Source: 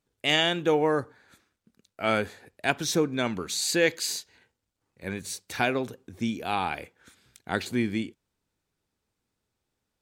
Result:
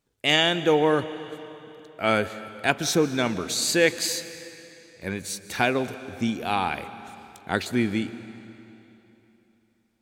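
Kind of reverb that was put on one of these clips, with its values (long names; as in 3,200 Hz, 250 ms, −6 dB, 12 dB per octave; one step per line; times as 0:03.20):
comb and all-pass reverb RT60 3.2 s, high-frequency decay 0.9×, pre-delay 100 ms, DRR 13.5 dB
level +3 dB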